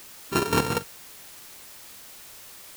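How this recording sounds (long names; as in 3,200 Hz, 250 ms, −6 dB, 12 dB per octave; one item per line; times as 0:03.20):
a buzz of ramps at a fixed pitch in blocks of 32 samples
chopped level 5.7 Hz, depth 65%, duty 45%
a quantiser's noise floor 8 bits, dither triangular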